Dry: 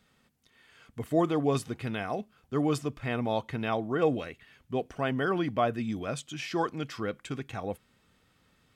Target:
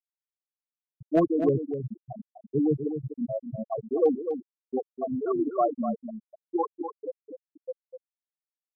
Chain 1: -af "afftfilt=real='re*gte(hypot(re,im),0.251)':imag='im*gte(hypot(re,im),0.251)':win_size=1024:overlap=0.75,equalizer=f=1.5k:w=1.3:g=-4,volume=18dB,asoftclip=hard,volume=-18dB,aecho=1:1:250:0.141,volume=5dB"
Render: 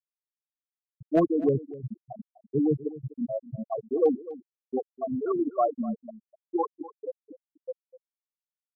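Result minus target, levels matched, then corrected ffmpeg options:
echo-to-direct -8.5 dB
-af "afftfilt=real='re*gte(hypot(re,im),0.251)':imag='im*gte(hypot(re,im),0.251)':win_size=1024:overlap=0.75,equalizer=f=1.5k:w=1.3:g=-4,volume=18dB,asoftclip=hard,volume=-18dB,aecho=1:1:250:0.376,volume=5dB"

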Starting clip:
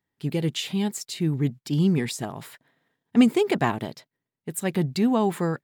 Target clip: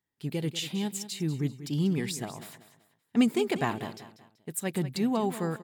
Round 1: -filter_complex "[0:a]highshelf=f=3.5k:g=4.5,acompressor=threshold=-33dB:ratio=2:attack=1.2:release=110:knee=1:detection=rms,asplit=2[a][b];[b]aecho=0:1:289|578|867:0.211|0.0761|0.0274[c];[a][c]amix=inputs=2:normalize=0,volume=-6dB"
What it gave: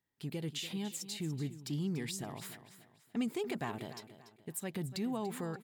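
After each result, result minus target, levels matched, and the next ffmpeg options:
compressor: peak gain reduction +12.5 dB; echo 98 ms late
-filter_complex "[0:a]highshelf=f=3.5k:g=4.5,asplit=2[a][b];[b]aecho=0:1:289|578|867:0.211|0.0761|0.0274[c];[a][c]amix=inputs=2:normalize=0,volume=-6dB"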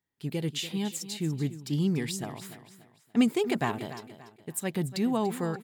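echo 98 ms late
-filter_complex "[0:a]highshelf=f=3.5k:g=4.5,asplit=2[a][b];[b]aecho=0:1:191|382|573:0.211|0.0761|0.0274[c];[a][c]amix=inputs=2:normalize=0,volume=-6dB"

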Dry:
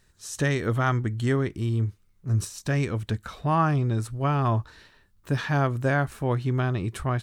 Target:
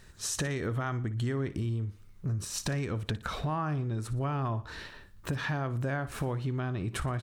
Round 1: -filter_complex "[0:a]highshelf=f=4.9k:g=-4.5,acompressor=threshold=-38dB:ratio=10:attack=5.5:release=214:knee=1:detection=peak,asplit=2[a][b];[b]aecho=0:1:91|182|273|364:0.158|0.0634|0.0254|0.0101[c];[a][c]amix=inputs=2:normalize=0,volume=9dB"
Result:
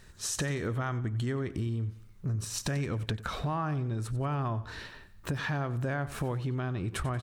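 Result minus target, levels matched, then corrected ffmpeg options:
echo 32 ms late
-filter_complex "[0:a]highshelf=f=4.9k:g=-4.5,acompressor=threshold=-38dB:ratio=10:attack=5.5:release=214:knee=1:detection=peak,asplit=2[a][b];[b]aecho=0:1:59|118|177|236:0.158|0.0634|0.0254|0.0101[c];[a][c]amix=inputs=2:normalize=0,volume=9dB"

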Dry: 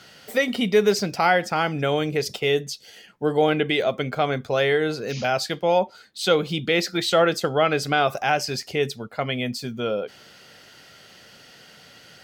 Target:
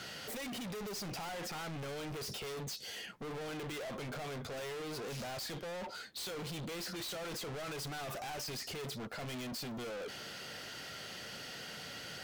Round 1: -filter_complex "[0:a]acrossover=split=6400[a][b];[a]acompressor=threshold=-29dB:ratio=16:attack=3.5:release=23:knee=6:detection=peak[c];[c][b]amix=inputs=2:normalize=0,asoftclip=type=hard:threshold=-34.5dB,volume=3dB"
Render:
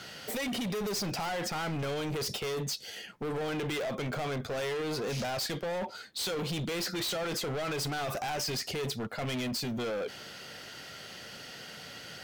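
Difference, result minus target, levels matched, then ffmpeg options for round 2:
hard clip: distortion -4 dB
-filter_complex "[0:a]acrossover=split=6400[a][b];[a]acompressor=threshold=-29dB:ratio=16:attack=3.5:release=23:knee=6:detection=peak[c];[c][b]amix=inputs=2:normalize=0,asoftclip=type=hard:threshold=-44dB,volume=3dB"

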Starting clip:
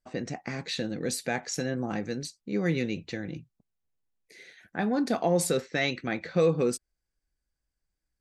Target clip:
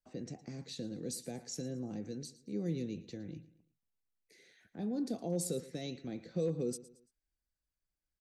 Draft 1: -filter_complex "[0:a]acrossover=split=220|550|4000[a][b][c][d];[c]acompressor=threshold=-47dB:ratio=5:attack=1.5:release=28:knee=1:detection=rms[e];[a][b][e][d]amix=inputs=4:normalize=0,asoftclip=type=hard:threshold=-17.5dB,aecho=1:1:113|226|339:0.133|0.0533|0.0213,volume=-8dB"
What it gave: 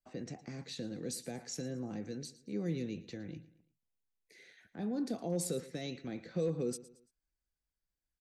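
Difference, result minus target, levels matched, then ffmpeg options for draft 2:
compressor: peak gain reduction -8 dB
-filter_complex "[0:a]acrossover=split=220|550|4000[a][b][c][d];[c]acompressor=threshold=-57dB:ratio=5:attack=1.5:release=28:knee=1:detection=rms[e];[a][b][e][d]amix=inputs=4:normalize=0,asoftclip=type=hard:threshold=-17.5dB,aecho=1:1:113|226|339:0.133|0.0533|0.0213,volume=-8dB"

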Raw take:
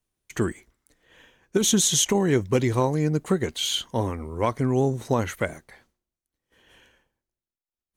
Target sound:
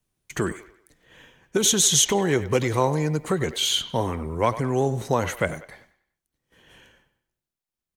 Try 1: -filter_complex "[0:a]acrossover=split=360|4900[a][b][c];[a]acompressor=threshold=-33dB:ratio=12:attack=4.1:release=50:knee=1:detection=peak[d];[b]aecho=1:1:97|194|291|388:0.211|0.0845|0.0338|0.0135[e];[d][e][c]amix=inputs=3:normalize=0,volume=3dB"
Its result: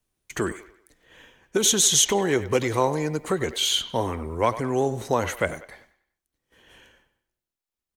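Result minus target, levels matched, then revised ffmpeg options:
125 Hz band -4.5 dB
-filter_complex "[0:a]acrossover=split=360|4900[a][b][c];[a]acompressor=threshold=-33dB:ratio=12:attack=4.1:release=50:knee=1:detection=peak,equalizer=f=150:t=o:w=0.94:g=6.5[d];[b]aecho=1:1:97|194|291|388:0.211|0.0845|0.0338|0.0135[e];[d][e][c]amix=inputs=3:normalize=0,volume=3dB"

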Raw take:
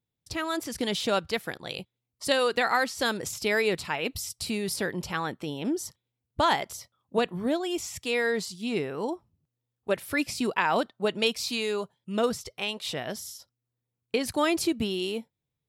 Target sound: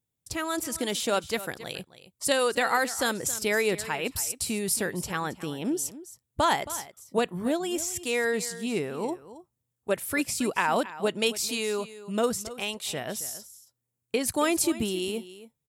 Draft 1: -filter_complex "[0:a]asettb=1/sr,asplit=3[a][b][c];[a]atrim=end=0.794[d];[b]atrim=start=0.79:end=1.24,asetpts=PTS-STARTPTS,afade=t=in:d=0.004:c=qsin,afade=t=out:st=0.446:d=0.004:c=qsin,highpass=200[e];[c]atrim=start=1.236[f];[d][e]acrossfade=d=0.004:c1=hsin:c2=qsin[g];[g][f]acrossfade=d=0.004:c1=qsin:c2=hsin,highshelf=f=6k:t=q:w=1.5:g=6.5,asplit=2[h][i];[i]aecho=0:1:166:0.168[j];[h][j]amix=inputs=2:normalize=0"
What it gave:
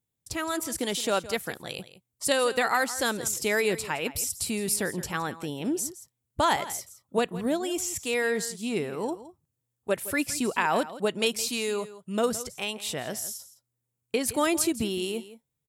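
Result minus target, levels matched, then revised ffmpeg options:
echo 0.106 s early
-filter_complex "[0:a]asettb=1/sr,asplit=3[a][b][c];[a]atrim=end=0.794[d];[b]atrim=start=0.79:end=1.24,asetpts=PTS-STARTPTS,afade=t=in:d=0.004:c=qsin,afade=t=out:st=0.446:d=0.004:c=qsin,highpass=200[e];[c]atrim=start=1.236[f];[d][e]acrossfade=d=0.004:c1=hsin:c2=qsin[g];[g][f]acrossfade=d=0.004:c1=qsin:c2=hsin,highshelf=f=6k:t=q:w=1.5:g=6.5,asplit=2[h][i];[i]aecho=0:1:272:0.168[j];[h][j]amix=inputs=2:normalize=0"

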